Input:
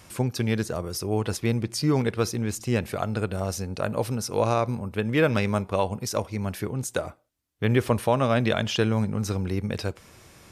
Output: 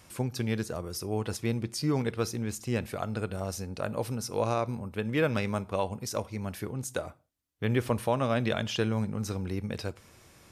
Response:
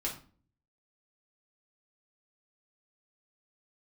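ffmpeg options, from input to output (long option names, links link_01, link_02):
-filter_complex "[0:a]asplit=2[link_01][link_02];[1:a]atrim=start_sample=2205,afade=type=out:start_time=0.24:duration=0.01,atrim=end_sample=11025,highshelf=frequency=5400:gain=11[link_03];[link_02][link_03]afir=irnorm=-1:irlink=0,volume=-21dB[link_04];[link_01][link_04]amix=inputs=2:normalize=0,volume=-6dB"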